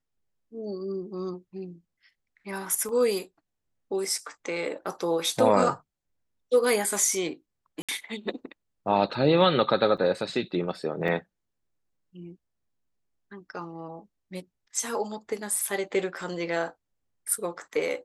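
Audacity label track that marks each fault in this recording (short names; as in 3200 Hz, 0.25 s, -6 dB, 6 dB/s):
2.890000	2.890000	gap 2.1 ms
4.180000	4.180000	gap 3.3 ms
7.820000	7.890000	gap 66 ms
9.970000	9.980000	gap 6.8 ms
11.080000	11.080000	gap 3.7 ms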